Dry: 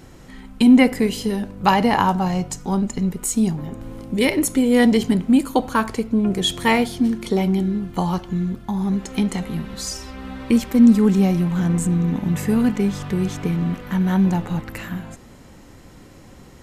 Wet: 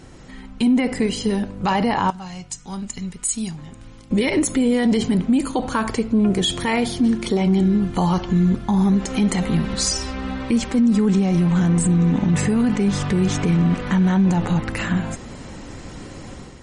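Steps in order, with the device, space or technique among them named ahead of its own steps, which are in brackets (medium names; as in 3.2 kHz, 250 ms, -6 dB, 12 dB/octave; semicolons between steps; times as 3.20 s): 2.10–4.11 s: amplifier tone stack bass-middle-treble 5-5-5; low-bitrate web radio (level rider gain up to 8 dB; peak limiter -12 dBFS, peak gain reduction 11 dB; trim +1.5 dB; MP3 40 kbps 48 kHz)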